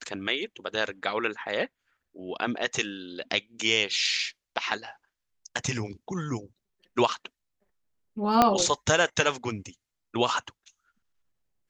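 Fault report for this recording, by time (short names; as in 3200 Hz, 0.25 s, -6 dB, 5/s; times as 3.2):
8.42 pop -5 dBFS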